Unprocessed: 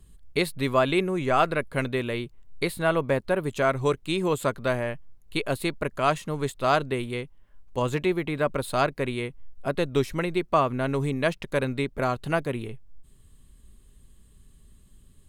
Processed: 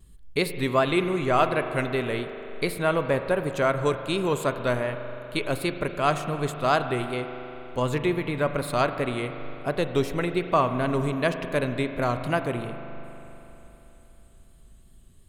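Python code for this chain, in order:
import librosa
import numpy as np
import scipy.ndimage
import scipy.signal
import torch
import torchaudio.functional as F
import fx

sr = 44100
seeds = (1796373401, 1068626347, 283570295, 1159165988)

y = fx.vibrato(x, sr, rate_hz=2.7, depth_cents=48.0)
y = fx.rev_spring(y, sr, rt60_s=3.5, pass_ms=(40,), chirp_ms=70, drr_db=8.0)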